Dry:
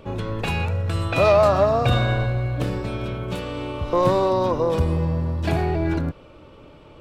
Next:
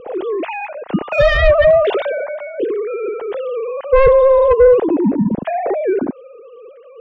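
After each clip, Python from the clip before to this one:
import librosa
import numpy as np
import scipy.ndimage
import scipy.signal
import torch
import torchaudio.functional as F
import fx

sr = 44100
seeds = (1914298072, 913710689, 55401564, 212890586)

y = fx.sine_speech(x, sr)
y = fx.fold_sine(y, sr, drive_db=11, ceiling_db=-3.0)
y = fx.tilt_shelf(y, sr, db=8.0, hz=810.0)
y = F.gain(torch.from_numpy(y), -5.0).numpy()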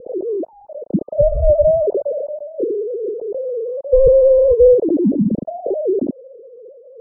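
y = scipy.signal.sosfilt(scipy.signal.ellip(4, 1.0, 70, 600.0, 'lowpass', fs=sr, output='sos'), x)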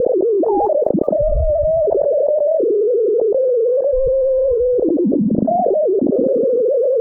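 y = fx.echo_feedback(x, sr, ms=170, feedback_pct=37, wet_db=-21)
y = fx.env_flatten(y, sr, amount_pct=100)
y = F.gain(torch.from_numpy(y), -8.0).numpy()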